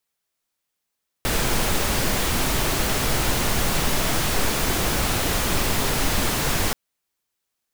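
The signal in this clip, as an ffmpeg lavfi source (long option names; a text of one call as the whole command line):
ffmpeg -f lavfi -i "anoisesrc=color=pink:amplitude=0.432:duration=5.48:sample_rate=44100:seed=1" out.wav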